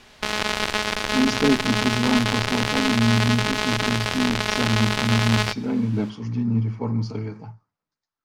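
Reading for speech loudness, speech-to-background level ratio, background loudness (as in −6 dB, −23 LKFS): −24.0 LKFS, −0.5 dB, −23.5 LKFS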